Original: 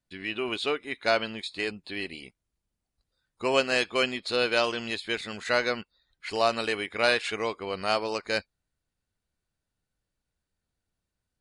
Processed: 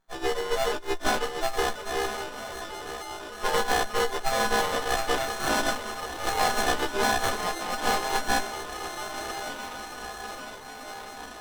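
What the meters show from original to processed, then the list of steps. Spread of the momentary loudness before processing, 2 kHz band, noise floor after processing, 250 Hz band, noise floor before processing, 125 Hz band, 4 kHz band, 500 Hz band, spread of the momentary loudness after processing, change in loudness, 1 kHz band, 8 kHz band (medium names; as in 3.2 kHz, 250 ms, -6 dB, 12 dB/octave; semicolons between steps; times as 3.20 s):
10 LU, +0.5 dB, -41 dBFS, 0.0 dB, -85 dBFS, +3.5 dB, +0.5 dB, -0.5 dB, 12 LU, 0.0 dB, +6.5 dB, +12.0 dB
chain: partials quantised in pitch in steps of 3 st; high-pass 1.2 kHz 12 dB/octave; compression, threshold -24 dBFS, peak gain reduction 7 dB; on a send: echo that smears into a reverb 1166 ms, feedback 65%, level -9.5 dB; on the sum: sliding maximum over 17 samples; trim +8 dB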